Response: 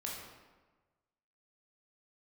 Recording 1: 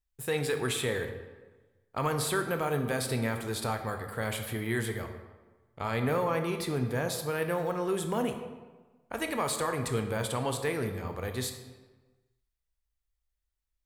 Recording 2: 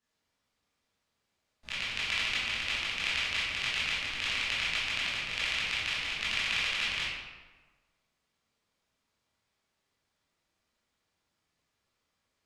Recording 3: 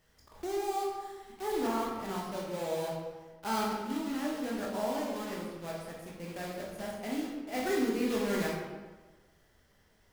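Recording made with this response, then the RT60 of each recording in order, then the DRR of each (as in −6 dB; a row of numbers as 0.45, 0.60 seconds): 3; 1.3, 1.3, 1.3 seconds; 5.5, −10.5, −3.5 decibels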